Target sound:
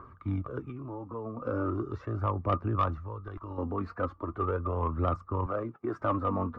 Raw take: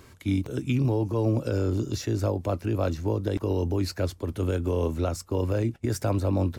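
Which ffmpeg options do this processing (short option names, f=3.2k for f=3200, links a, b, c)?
-filter_complex "[0:a]asettb=1/sr,asplit=3[a][b][c];[a]atrim=end=0.614[d];[b]atrim=start=0.61:end=1.42,asetpts=PTS-STARTPTS,afade=t=in:d=0.004:c=qsin,afade=t=out:st=0.806:d=0.004:c=qsin,acompressor=threshold=-30dB:ratio=6[e];[c]atrim=start=1.416[f];[d][e]acrossfade=d=0.004:c1=hsin:c2=qsin[g];[g][f]acrossfade=d=0.004:c1=qsin:c2=hsin,asettb=1/sr,asplit=3[h][i][j];[h]atrim=end=2.984[k];[i]atrim=start=2.98:end=3.58,asetpts=PTS-STARTPTS,afade=t=in:d=0.004:c=qsin,afade=t=out:st=0.596:d=0.004:c=qsin,equalizer=f=420:w=0.42:g=-14[l];[j]atrim=start=3.576[m];[k][l]acrossfade=d=0.004:c1=hsin:c2=qsin[n];[n][m]acrossfade=d=0.004:c1=qsin:c2=hsin,asettb=1/sr,asplit=3[o][p][q];[o]atrim=end=5.464[r];[p]atrim=start=5.46:end=6.01,asetpts=PTS-STARTPTS,afade=t=in:d=0.004:c=qsin,afade=t=out:st=0.546:d=0.004:c=qsin,highpass=f=140:w=0.5412,highpass=f=140:w=1.3066[s];[q]atrim=start=6.006[t];[r][s]acrossfade=d=0.004:c1=hsin:c2=qsin[u];[u][t]acrossfade=d=0.004:c1=qsin:c2=hsin,aphaser=in_gain=1:out_gain=1:delay=4.6:decay=0.5:speed=0.39:type=triangular,lowpass=f=1.2k:t=q:w=15,asoftclip=type=tanh:threshold=-10dB,volume=-6.5dB"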